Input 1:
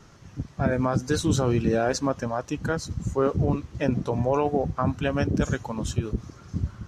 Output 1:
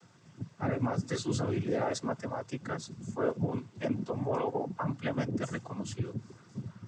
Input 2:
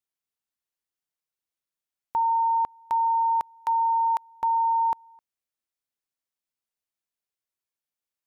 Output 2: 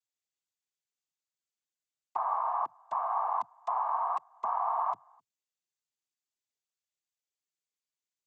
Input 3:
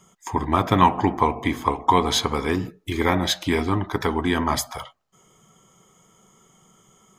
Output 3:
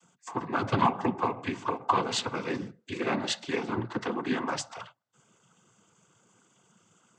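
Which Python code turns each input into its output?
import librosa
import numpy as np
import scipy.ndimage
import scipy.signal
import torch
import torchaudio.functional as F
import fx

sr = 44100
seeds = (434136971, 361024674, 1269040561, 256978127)

y = fx.noise_vocoder(x, sr, seeds[0], bands=16)
y = y * 10.0 ** (-7.5 / 20.0)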